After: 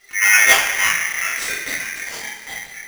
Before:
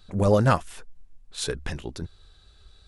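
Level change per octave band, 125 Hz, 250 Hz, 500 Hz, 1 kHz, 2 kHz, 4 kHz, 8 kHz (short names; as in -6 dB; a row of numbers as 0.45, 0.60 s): -22.0, -13.5, -7.5, +4.0, +23.0, +14.5, +20.5 dB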